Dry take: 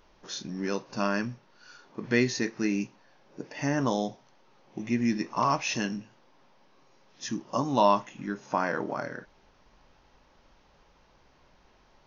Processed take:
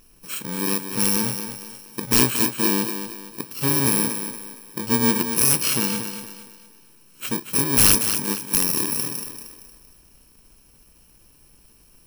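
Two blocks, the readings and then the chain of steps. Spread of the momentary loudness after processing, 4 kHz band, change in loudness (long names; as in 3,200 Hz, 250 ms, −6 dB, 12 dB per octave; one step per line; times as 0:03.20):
18 LU, +13.0 dB, +10.0 dB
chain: samples in bit-reversed order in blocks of 64 samples
wrap-around overflow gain 13.5 dB
feedback echo with a high-pass in the loop 232 ms, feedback 40%, high-pass 160 Hz, level −8 dB
level +7 dB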